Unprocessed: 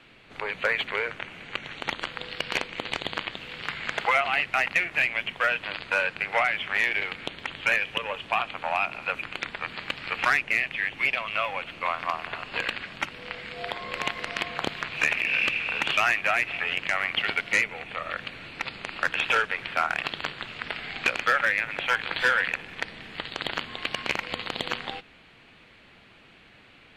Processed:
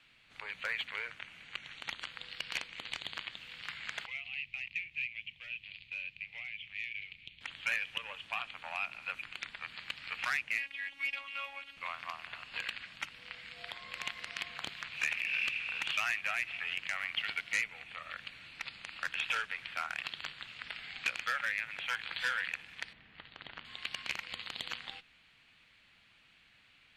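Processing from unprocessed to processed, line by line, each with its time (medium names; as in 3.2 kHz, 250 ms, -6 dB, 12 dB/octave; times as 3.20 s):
4.06–7.41 s: FFT filter 120 Hz 0 dB, 250 Hz -11 dB, 1.5 kHz -27 dB, 2.4 kHz -2 dB, 10 kHz -23 dB
10.58–11.77 s: robot voice 278 Hz
22.93–23.65 s: tape spacing loss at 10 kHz 32 dB
whole clip: amplifier tone stack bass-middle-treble 5-5-5; band-stop 390 Hz, Q 12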